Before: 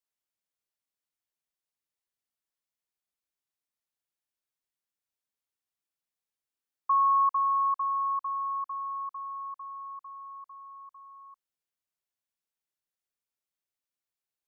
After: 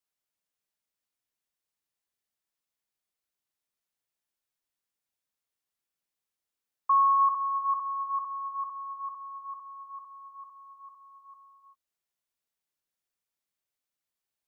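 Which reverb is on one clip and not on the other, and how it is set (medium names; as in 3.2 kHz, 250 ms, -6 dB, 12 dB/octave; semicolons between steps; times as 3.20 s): gated-style reverb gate 420 ms rising, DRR 8.5 dB; trim +1.5 dB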